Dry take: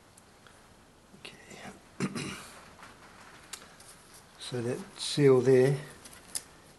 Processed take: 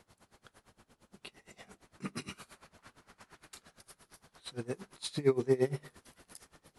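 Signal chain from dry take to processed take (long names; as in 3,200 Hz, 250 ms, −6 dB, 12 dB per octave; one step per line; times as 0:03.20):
tremolo with a sine in dB 8.7 Hz, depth 22 dB
level −1.5 dB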